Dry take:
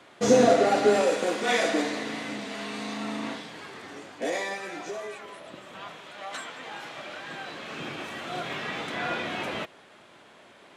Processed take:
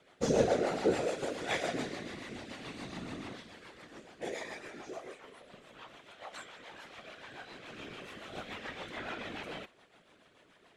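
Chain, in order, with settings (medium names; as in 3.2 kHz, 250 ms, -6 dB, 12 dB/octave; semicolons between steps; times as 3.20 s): whisper effect; rotary cabinet horn 7 Hz; trim -7.5 dB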